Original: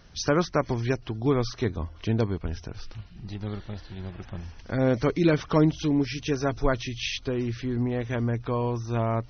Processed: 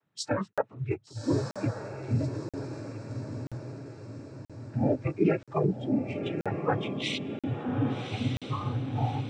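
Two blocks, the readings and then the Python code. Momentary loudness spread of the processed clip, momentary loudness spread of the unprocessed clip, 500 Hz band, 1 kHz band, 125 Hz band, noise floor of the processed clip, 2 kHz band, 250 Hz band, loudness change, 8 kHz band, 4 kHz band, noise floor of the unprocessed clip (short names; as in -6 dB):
12 LU, 16 LU, -5.0 dB, -3.0 dB, -3.0 dB, -65 dBFS, -5.5 dB, -4.0 dB, -4.5 dB, n/a, -4.0 dB, -47 dBFS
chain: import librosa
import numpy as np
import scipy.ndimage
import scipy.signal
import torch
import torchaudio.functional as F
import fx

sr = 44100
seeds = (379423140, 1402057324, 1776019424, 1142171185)

p1 = fx.wiener(x, sr, points=9)
p2 = fx.noise_vocoder(p1, sr, seeds[0], bands=12)
p3 = fx.rider(p2, sr, range_db=5, speed_s=2.0)
p4 = fx.noise_reduce_blind(p3, sr, reduce_db=18)
p5 = p4 + fx.echo_diffused(p4, sr, ms=1173, feedback_pct=50, wet_db=-6.0, dry=0)
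p6 = fx.buffer_crackle(p5, sr, first_s=0.53, period_s=0.98, block=2048, kind='zero')
y = p6 * 10.0 ** (-2.0 / 20.0)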